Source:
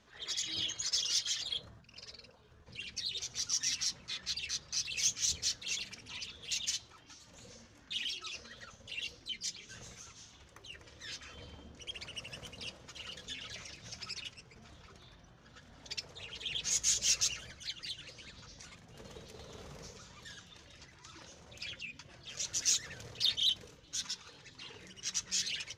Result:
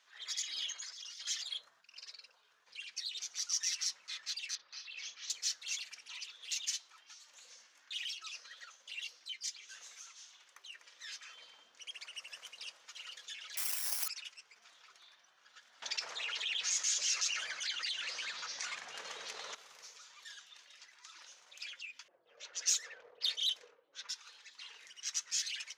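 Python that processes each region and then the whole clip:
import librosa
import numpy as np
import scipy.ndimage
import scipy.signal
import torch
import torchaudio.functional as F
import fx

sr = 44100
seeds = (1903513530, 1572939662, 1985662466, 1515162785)

y = fx.chain(x, sr, fx.high_shelf(hz=3400.0, db=-9.0),
    fx.over_compress(threshold_db=-46.0, ratio=-1.0),
    fx.highpass(hz=200.0, slope=12), at=(0.74, 1.27))
y = fx.chain(y, sr, fx.lowpass(hz=4000.0, slope=24),
    fx.peak_eq(hz=3000.0, db=-5.0, octaves=1.7),
    fx.doubler(ms=43.0, db=-10), at=(4.55, 5.3))
y = fx.chain(y, sr, fx.highpass(hz=170.0, slope=12),
    fx.quant_float(bits=6), at=(6.12, 9.98))
y = fx.chain(y, sr, fx.high_shelf(hz=9700.0, db=2.5),
    fx.resample_bad(factor=8, down='none', up='zero_stuff'),
    fx.env_flatten(amount_pct=70), at=(13.57, 14.08))
y = fx.chain(y, sr, fx.air_absorb(metres=64.0),
    fx.env_flatten(amount_pct=70), at=(15.82, 19.55))
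y = fx.chain(y, sr, fx.env_lowpass(base_hz=450.0, full_db=-28.5),
    fx.peak_eq(hz=480.0, db=13.5, octaves=0.8), at=(22.08, 24.09))
y = fx.dynamic_eq(y, sr, hz=3500.0, q=1.4, threshold_db=-48.0, ratio=4.0, max_db=-4)
y = scipy.signal.sosfilt(scipy.signal.butter(2, 1200.0, 'highpass', fs=sr, output='sos'), y)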